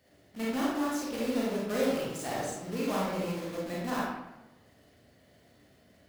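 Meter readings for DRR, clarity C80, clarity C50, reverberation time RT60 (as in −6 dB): −6.0 dB, 3.0 dB, −1.5 dB, 1.0 s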